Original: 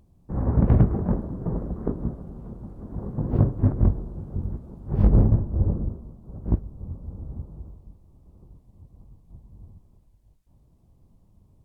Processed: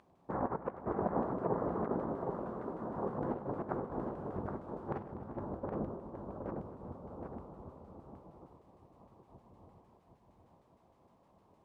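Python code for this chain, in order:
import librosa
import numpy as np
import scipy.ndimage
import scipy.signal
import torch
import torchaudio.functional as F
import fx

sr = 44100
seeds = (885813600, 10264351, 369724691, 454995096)

y = fx.low_shelf(x, sr, hz=190.0, db=-7.5)
y = fx.over_compress(y, sr, threshold_db=-31.0, ratio=-0.5)
y = fx.filter_lfo_bandpass(y, sr, shape='saw_down', hz=6.5, low_hz=730.0, high_hz=1500.0, q=0.97)
y = fx.echo_multitap(y, sr, ms=(99, 245, 390, 768), db=(-16.5, -16.5, -17.0, -5.5))
y = F.gain(torch.from_numpy(y), 5.5).numpy()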